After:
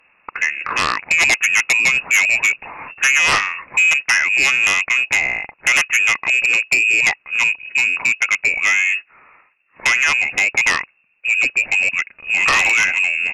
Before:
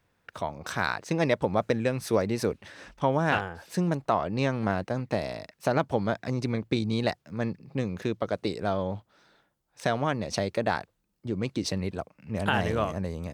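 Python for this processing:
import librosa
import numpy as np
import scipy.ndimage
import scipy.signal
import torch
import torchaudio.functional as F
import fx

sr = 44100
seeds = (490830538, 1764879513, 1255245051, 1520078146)

y = fx.freq_invert(x, sr, carrier_hz=2700)
y = fx.low_shelf(y, sr, hz=130.0, db=-6.5)
y = fx.fold_sine(y, sr, drive_db=11, ceiling_db=-9.5)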